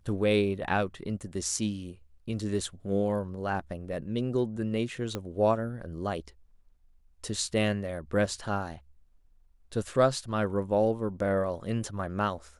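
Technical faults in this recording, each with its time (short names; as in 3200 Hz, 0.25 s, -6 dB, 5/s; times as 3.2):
5.15 pop -18 dBFS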